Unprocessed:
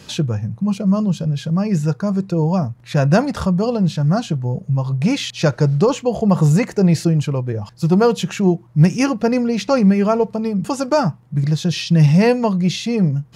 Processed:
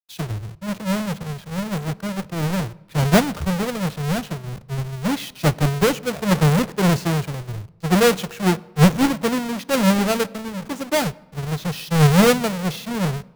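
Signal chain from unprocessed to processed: half-waves squared off; bit-crush 5-bit; on a send at -18 dB: reverb RT60 2.7 s, pre-delay 4 ms; on the sum: three-band expander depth 100%; gain -8.5 dB

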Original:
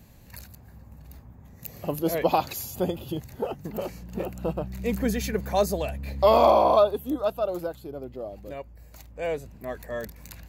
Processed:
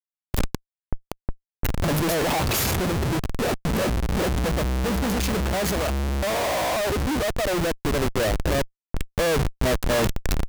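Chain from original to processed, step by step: Schmitt trigger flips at -37 dBFS; expander -45 dBFS; vocal rider within 4 dB 2 s; gain +4.5 dB

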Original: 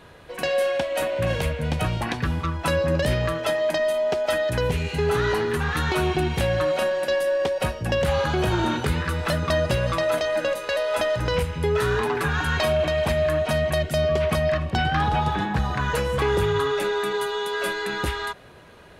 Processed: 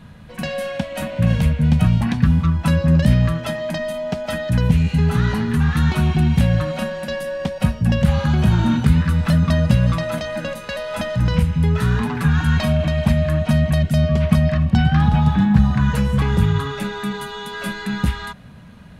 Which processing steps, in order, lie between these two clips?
resonant low shelf 280 Hz +9.5 dB, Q 3; gain -1 dB

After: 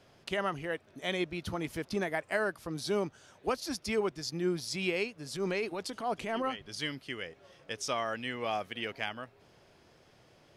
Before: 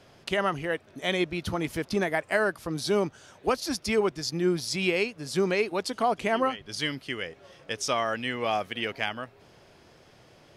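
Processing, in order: 5.32–6.7 transient shaper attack -9 dB, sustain +3 dB; gain -6 dB

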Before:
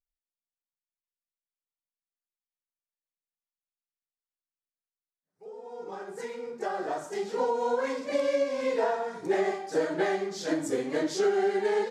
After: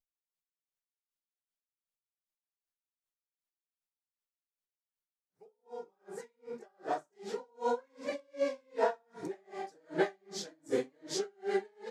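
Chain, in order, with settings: dB-linear tremolo 2.6 Hz, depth 40 dB

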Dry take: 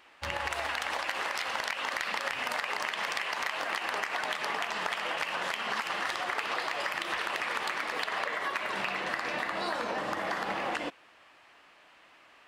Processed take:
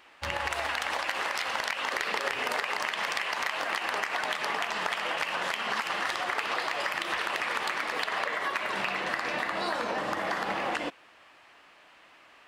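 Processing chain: 1.92–2.63 bell 410 Hz +11 dB 0.47 oct; gain +2 dB

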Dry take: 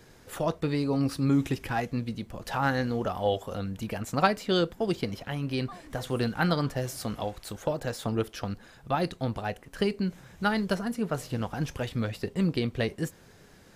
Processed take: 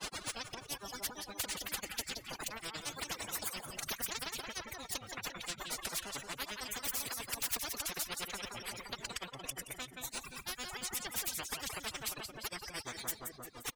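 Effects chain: reverb removal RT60 0.97 s; spectral repair 12.6–13.04, 2500–5700 Hz after; reverb removal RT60 0.58 s; gate with hold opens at -49 dBFS; low shelf 180 Hz -5.5 dB; reverse; compressor 6:1, threshold -39 dBFS, peak gain reduction 20 dB; reverse; limiter -33 dBFS, peak gain reduction 6 dB; upward compressor, threshold -57 dBFS; grains 0.1 s, grains 8.8/s, pitch spread up and down by 7 st; formant-preserving pitch shift +8 st; on a send: feedback echo 0.174 s, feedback 48%, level -18 dB; on the sum: spectral compressor 10:1; gain +9.5 dB

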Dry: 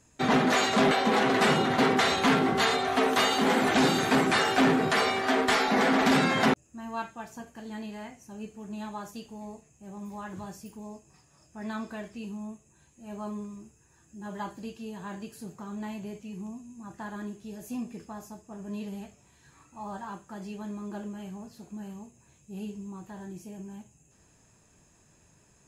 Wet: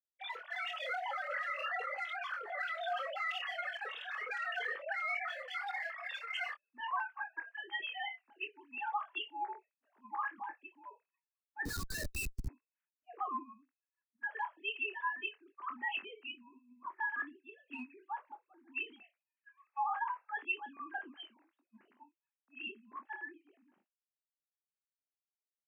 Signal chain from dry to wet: sine-wave speech; in parallel at -8 dB: hard clip -23.5 dBFS, distortion -11 dB; on the sum: HPF 1300 Hz 12 dB/oct; doubler 24 ms -9 dB; compressor 6:1, threshold -38 dBFS, peak gain reduction 16.5 dB; expander -55 dBFS; 11.65–12.48 Schmitt trigger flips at -44.5 dBFS; dynamic EQ 1900 Hz, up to +3 dB, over -54 dBFS, Q 5.8; limiter -34 dBFS, peak gain reduction 8 dB; spectral noise reduction 15 dB; three-band expander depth 70%; gain +5.5 dB

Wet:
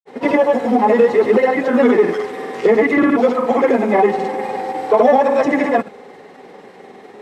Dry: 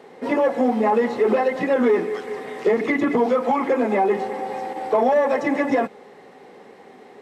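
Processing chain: grains, pitch spread up and down by 0 st; gain +7 dB

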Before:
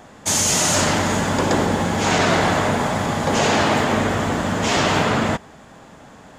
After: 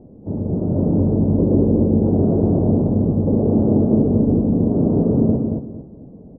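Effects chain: inverse Chebyshev low-pass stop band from 2600 Hz, stop band 80 dB; feedback echo 0.226 s, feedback 27%, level -4 dB; gain +5 dB

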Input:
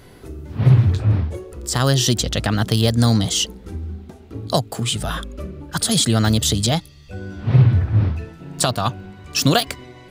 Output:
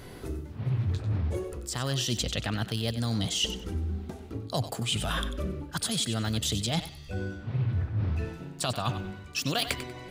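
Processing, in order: dynamic EQ 2600 Hz, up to +6 dB, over -38 dBFS, Q 1.8; reverse; compressor 6:1, threshold -27 dBFS, peak gain reduction 17.5 dB; reverse; thinning echo 95 ms, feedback 26%, level -11 dB

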